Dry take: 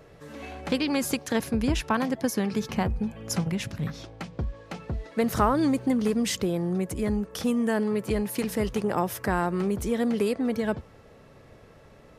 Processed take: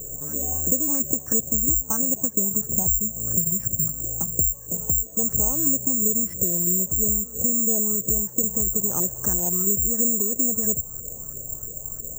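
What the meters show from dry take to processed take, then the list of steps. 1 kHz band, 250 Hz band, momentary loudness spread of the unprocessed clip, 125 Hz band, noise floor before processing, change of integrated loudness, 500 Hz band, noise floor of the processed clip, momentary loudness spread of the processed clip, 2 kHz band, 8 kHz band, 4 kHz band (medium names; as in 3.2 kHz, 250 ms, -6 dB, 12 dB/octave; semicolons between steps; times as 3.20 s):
-11.5 dB, -4.0 dB, 11 LU, -0.5 dB, -52 dBFS, +7.0 dB, -5.5 dB, -38 dBFS, 7 LU, under -15 dB, +19.0 dB, under -20 dB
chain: tilt EQ -4.5 dB/octave; compression 4:1, threshold -26 dBFS, peak gain reduction 16 dB; LFO low-pass saw up 3 Hz 390–1700 Hz; on a send: reverse echo 211 ms -21 dB; on the sum: careless resampling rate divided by 6×, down filtered, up zero stuff; trim -4.5 dB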